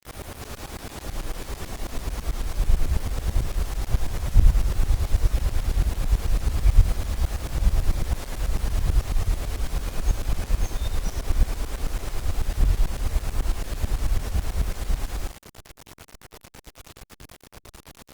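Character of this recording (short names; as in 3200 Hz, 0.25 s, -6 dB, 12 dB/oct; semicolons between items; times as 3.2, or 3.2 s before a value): tremolo saw up 9.1 Hz, depth 90%; a quantiser's noise floor 8-bit, dither none; Opus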